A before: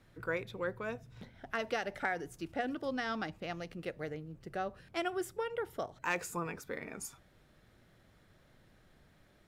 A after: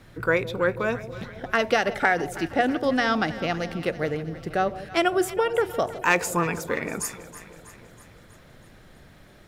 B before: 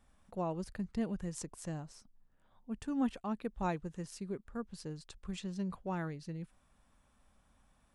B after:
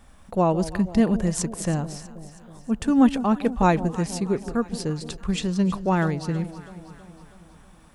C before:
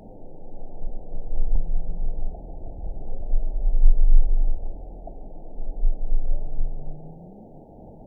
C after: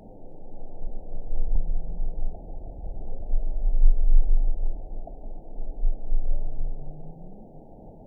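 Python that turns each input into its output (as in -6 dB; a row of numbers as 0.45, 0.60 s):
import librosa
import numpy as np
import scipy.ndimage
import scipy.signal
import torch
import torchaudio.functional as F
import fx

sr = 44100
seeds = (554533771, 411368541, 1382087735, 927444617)

y = fx.echo_alternate(x, sr, ms=161, hz=800.0, feedback_pct=75, wet_db=-13)
y = y * 10.0 ** (-6 / 20.0) / np.max(np.abs(y))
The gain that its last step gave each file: +13.5, +16.0, -2.5 dB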